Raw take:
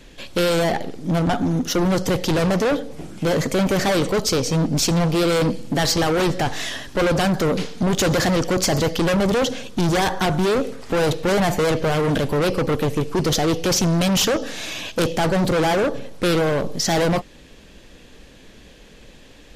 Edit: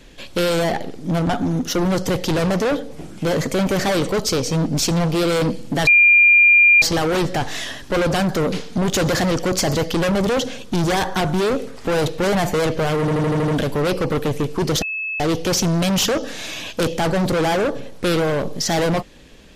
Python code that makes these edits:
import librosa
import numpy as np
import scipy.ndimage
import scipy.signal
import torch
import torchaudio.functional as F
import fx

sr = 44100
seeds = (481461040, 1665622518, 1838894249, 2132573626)

y = fx.edit(x, sr, fx.insert_tone(at_s=5.87, length_s=0.95, hz=2400.0, db=-8.0),
    fx.stutter(start_s=12.05, slice_s=0.08, count=7),
    fx.insert_tone(at_s=13.39, length_s=0.38, hz=2600.0, db=-22.5), tone=tone)